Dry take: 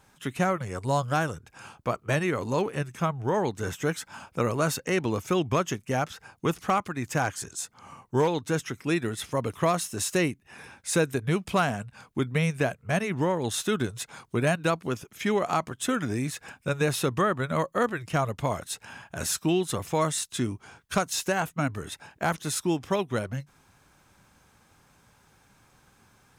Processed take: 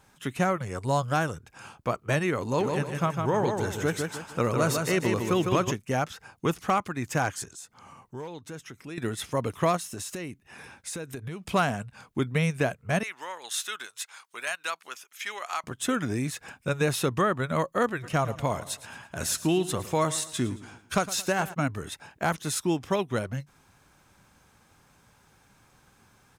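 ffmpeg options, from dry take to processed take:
ffmpeg -i in.wav -filter_complex "[0:a]asplit=3[link_01][link_02][link_03];[link_01]afade=type=out:start_time=2.59:duration=0.02[link_04];[link_02]aecho=1:1:154|308|462|616:0.596|0.203|0.0689|0.0234,afade=type=in:start_time=2.59:duration=0.02,afade=type=out:start_time=5.7:duration=0.02[link_05];[link_03]afade=type=in:start_time=5.7:duration=0.02[link_06];[link_04][link_05][link_06]amix=inputs=3:normalize=0,asettb=1/sr,asplit=3[link_07][link_08][link_09];[link_07]atrim=end=7.444[link_10];[link_08]atrim=start=7.44:end=8.98,asetpts=PTS-STARTPTS,afade=type=in:duration=0.004:curve=qsin,afade=type=out:start_time=1.536:duration=0.004:curve=qsin,acompressor=threshold=-47dB:ratio=2:attack=3.2:release=140:knee=1:detection=peak[link_11];[link_09]atrim=start=8.976[link_12];[link_10][link_11]acrossfade=duration=0.004:curve1=hsin:curve2=qsin[link_13];[link_13][link_12]acrossfade=duration=0.004:curve1=qsin:curve2=hsin,asplit=3[link_14][link_15][link_16];[link_14]afade=type=out:start_time=9.76:duration=0.02[link_17];[link_15]acompressor=threshold=-32dB:ratio=10:attack=3.2:release=140:knee=1:detection=peak,afade=type=in:start_time=9.76:duration=0.02,afade=type=out:start_time=11.44:duration=0.02[link_18];[link_16]afade=type=in:start_time=11.44:duration=0.02[link_19];[link_17][link_18][link_19]amix=inputs=3:normalize=0,asettb=1/sr,asplit=3[link_20][link_21][link_22];[link_20]atrim=end=13.034[link_23];[link_21]atrim=start=13.03:end=15.64,asetpts=PTS-STARTPTS,afade=type=in:duration=0.004:curve=qsin,afade=type=out:start_time=2.606:duration=0.004:curve=qsin,highpass=1300[link_24];[link_22]atrim=start=15.636[link_25];[link_23][link_24]acrossfade=duration=0.004:curve1=hsin:curve2=qsin[link_26];[link_26][link_25]acrossfade=duration=0.004:curve1=qsin:curve2=hsin,asplit=3[link_27][link_28][link_29];[link_27]afade=type=out:start_time=18.02:duration=0.02[link_30];[link_28]aecho=1:1:111|222|333|444:0.168|0.0688|0.0282|0.0116,afade=type=in:start_time=18.02:duration=0.02,afade=type=out:start_time=21.53:duration=0.02[link_31];[link_29]afade=type=in:start_time=21.53:duration=0.02[link_32];[link_30][link_31][link_32]amix=inputs=3:normalize=0" out.wav

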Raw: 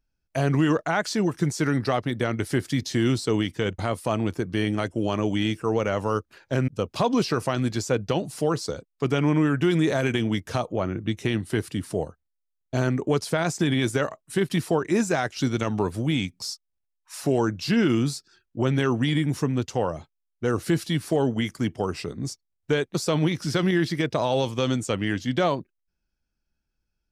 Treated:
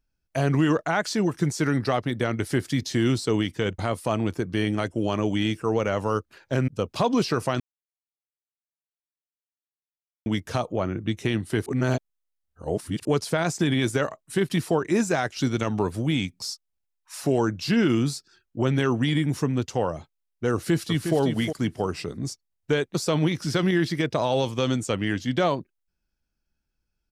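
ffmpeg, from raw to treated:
ffmpeg -i in.wav -filter_complex "[0:a]asplit=2[link_01][link_02];[link_02]afade=type=in:start_time=20.53:duration=0.01,afade=type=out:start_time=21.16:duration=0.01,aecho=0:1:360|720|1080:0.446684|0.0893367|0.0178673[link_03];[link_01][link_03]amix=inputs=2:normalize=0,asplit=5[link_04][link_05][link_06][link_07][link_08];[link_04]atrim=end=7.6,asetpts=PTS-STARTPTS,afade=type=out:start_time=7.596:duration=0.004:curve=hsin[link_09];[link_05]atrim=start=7.6:end=10.26,asetpts=PTS-STARTPTS,volume=0[link_10];[link_06]atrim=start=10.26:end=11.662,asetpts=PTS-STARTPTS,afade=type=in:duration=0.004:curve=hsin[link_11];[link_07]atrim=start=11.658:end=13.052,asetpts=PTS-STARTPTS,areverse[link_12];[link_08]atrim=start=13.048[link_13];[link_09][link_10][link_11]concat=n=3:v=0:a=1[link_14];[link_14][link_12]acrossfade=duration=0.004:curve1=hsin:curve2=hsin[link_15];[link_15][link_13]acrossfade=duration=0.004:curve1=hsin:curve2=hsin" out.wav

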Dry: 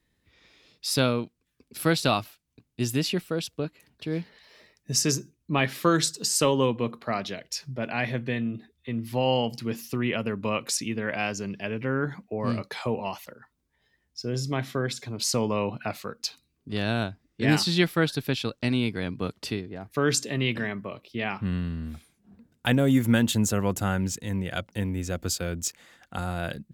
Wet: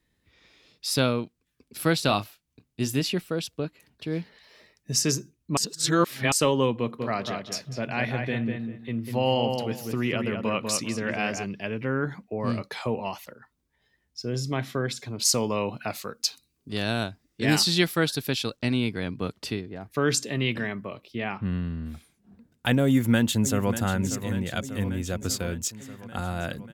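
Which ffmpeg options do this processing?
ffmpeg -i in.wav -filter_complex "[0:a]asettb=1/sr,asplit=3[link_01][link_02][link_03];[link_01]atrim=end=2.064[link_04];[link_02]atrim=start=2.06:end=3.02,asetpts=PTS-STARTPTS,afade=type=in:duration=0.004:curve=qsin,afade=type=out:start_time=0.956:duration=0.004:curve=qsin,asplit=2[link_05][link_06];[link_06]adelay=29,volume=-12dB[link_07];[link_05][link_07]amix=inputs=2:normalize=0,atrim=end_sample=42336[link_08];[link_03]atrim=start=3.016[link_09];[link_04][link_08]acrossfade=duration=0.004:curve1=hsin:curve2=qsin[link_10];[link_10][link_09]acrossfade=duration=0.004:curve1=qsin:curve2=hsin,asplit=3[link_11][link_12][link_13];[link_11]afade=type=out:start_time=6.98:duration=0.02[link_14];[link_12]asplit=2[link_15][link_16];[link_16]adelay=197,lowpass=frequency=2300:poles=1,volume=-4.5dB,asplit=2[link_17][link_18];[link_18]adelay=197,lowpass=frequency=2300:poles=1,volume=0.24,asplit=2[link_19][link_20];[link_20]adelay=197,lowpass=frequency=2300:poles=1,volume=0.24[link_21];[link_15][link_17][link_19][link_21]amix=inputs=4:normalize=0,afade=type=in:start_time=6.98:duration=0.02,afade=type=out:start_time=11.43:duration=0.02[link_22];[link_13]afade=type=in:start_time=11.43:duration=0.02[link_23];[link_14][link_22][link_23]amix=inputs=3:normalize=0,asettb=1/sr,asplit=3[link_24][link_25][link_26];[link_24]atrim=end=15.254[link_27];[link_25]atrim=start=15.25:end=18.57,asetpts=PTS-STARTPTS,afade=type=in:duration=0.004:curve=qsin,afade=type=out:start_time=3.316:duration=0.004:curve=qsin,bass=frequency=250:gain=-2,treble=frequency=4000:gain=7[link_28];[link_26]atrim=start=18.566[link_29];[link_27][link_28]acrossfade=duration=0.004:curve1=hsin:curve2=qsin[link_30];[link_30][link_29]acrossfade=duration=0.004:curve1=qsin:curve2=hsin,asettb=1/sr,asplit=3[link_31][link_32][link_33];[link_31]atrim=end=21.184[link_34];[link_32]atrim=start=21.18:end=21.86,asetpts=PTS-STARTPTS,afade=type=in:duration=0.004:curve=qsin,afade=type=out:start_time=0.676:duration=0.004:curve=qsin,highshelf=frequency=4300:gain=-11[link_35];[link_33]atrim=start=21.856[link_36];[link_34][link_35]acrossfade=duration=0.004:curve1=hsin:curve2=qsin[link_37];[link_37][link_36]acrossfade=duration=0.004:curve1=qsin:curve2=hsin,asplit=2[link_38][link_39];[link_39]afade=type=in:start_time=22.85:duration=0.01,afade=type=out:start_time=23.73:duration=0.01,aecho=0:1:590|1180|1770|2360|2950|3540|4130|4720|5310|5900:0.281838|0.197287|0.138101|0.0966705|0.0676694|0.0473686|0.033158|0.0232106|0.0162474|0.0113732[link_40];[link_38][link_40]amix=inputs=2:normalize=0,asplit=3[link_41][link_42][link_43];[link_41]atrim=end=5.572[link_44];[link_42]atrim=start=5.568:end=6.322,asetpts=PTS-STARTPTS,areverse[link_45];[link_43]atrim=start=6.318[link_46];[link_44][link_45]acrossfade=duration=0.004:curve1=hsin:curve2=hsin[link_47];[link_47][link_46]acrossfade=duration=0.004:curve1=hsin:curve2=hsin" out.wav

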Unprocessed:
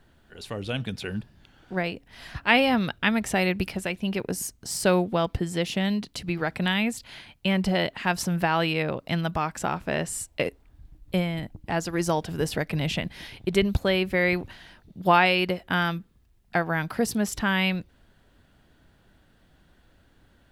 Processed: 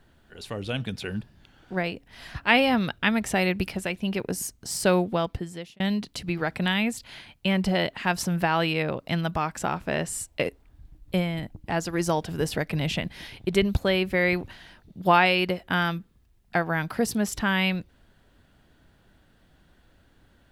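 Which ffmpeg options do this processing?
ffmpeg -i in.wav -filter_complex "[0:a]asplit=2[link_01][link_02];[link_01]atrim=end=5.8,asetpts=PTS-STARTPTS,afade=type=out:start_time=5.1:duration=0.7[link_03];[link_02]atrim=start=5.8,asetpts=PTS-STARTPTS,afade=type=in:duration=0.004:curve=hsin[link_04];[link_03][link_04]concat=n=2:v=0:a=1" out.wav

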